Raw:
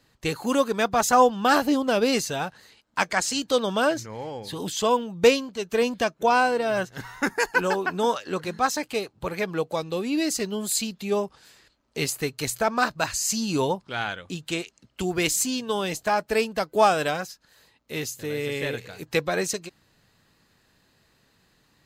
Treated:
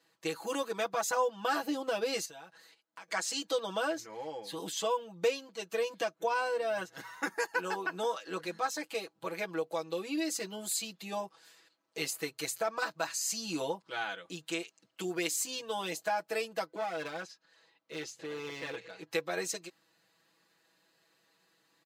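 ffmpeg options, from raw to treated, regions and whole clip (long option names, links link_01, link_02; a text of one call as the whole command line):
ffmpeg -i in.wav -filter_complex "[0:a]asettb=1/sr,asplit=3[link_01][link_02][link_03];[link_01]atrim=end=2.254[link_04];[link_02]atrim=start=2.25:end=3.08,asetpts=PTS-STARTPTS,afade=type=in:duration=0.004:curve=qsin,afade=type=out:start_time=0.826:duration=0.004:curve=qsin,agate=range=-8dB:threshold=-55dB:ratio=16:release=100:detection=peak,acompressor=threshold=-40dB:ratio=6:attack=3.2:release=140:knee=1:detection=peak[link_05];[link_03]atrim=start=3.076[link_06];[link_04][link_05]acrossfade=duration=0.004:curve1=hsin:curve2=qsin[link_07];[link_07][link_06]acrossfade=duration=0.004:curve1=qsin:curve2=hsin,asettb=1/sr,asplit=3[link_08][link_09][link_10];[link_08]atrim=end=16.664[link_11];[link_09]atrim=start=16.66:end=19.11,asetpts=PTS-STARTPTS,afade=type=in:duration=0.004:curve=qsin,afade=type=out:start_time=2.446:duration=0.004:curve=qsin,lowpass=5000,acompressor=threshold=-24dB:ratio=3:attack=3.2:release=140:knee=1:detection=peak,aeval=exprs='clip(val(0),-1,0.0299)':channel_layout=same[link_12];[link_10]atrim=start=19.106[link_13];[link_11][link_12]acrossfade=duration=0.004:curve1=hsin:curve2=qsin[link_14];[link_14][link_13]acrossfade=duration=0.004:curve1=qsin:curve2=hsin,highpass=300,aecho=1:1:6.1:0.98,acompressor=threshold=-22dB:ratio=2,volume=-9dB" out.wav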